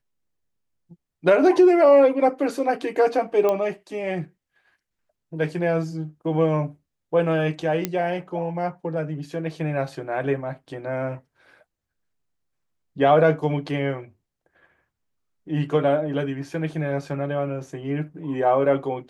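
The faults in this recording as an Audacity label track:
3.490000	3.490000	click −11 dBFS
7.850000	7.850000	click −8 dBFS

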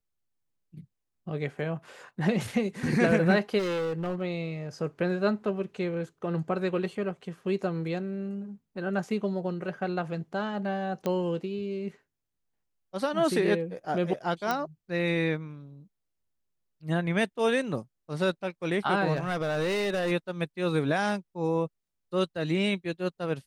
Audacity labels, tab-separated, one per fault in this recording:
3.580000	4.220000	clipping −27 dBFS
11.060000	11.060000	click −17 dBFS
14.510000	14.510000	click −14 dBFS
19.150000	20.120000	clipping −24.5 dBFS

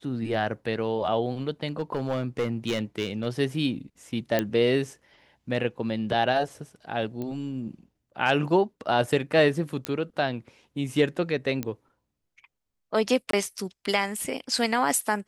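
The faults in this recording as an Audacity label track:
1.790000	3.260000	clipping −21.5 dBFS
4.390000	4.390000	click −10 dBFS
7.220000	7.220000	click −22 dBFS
9.850000	9.850000	click −13 dBFS
11.630000	11.630000	click −16 dBFS
13.310000	13.330000	drop-out 23 ms

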